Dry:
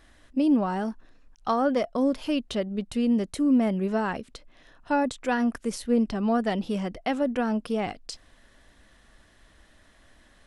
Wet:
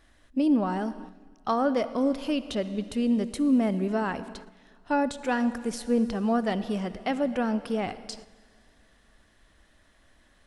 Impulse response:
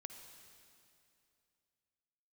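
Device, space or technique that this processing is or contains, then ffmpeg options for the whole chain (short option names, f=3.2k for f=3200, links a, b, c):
keyed gated reverb: -filter_complex "[0:a]asplit=3[a][b][c];[1:a]atrim=start_sample=2205[d];[b][d]afir=irnorm=-1:irlink=0[e];[c]apad=whole_len=461362[f];[e][f]sidechaingate=range=-9dB:threshold=-48dB:ratio=16:detection=peak,volume=3.5dB[g];[a][g]amix=inputs=2:normalize=0,volume=-6dB"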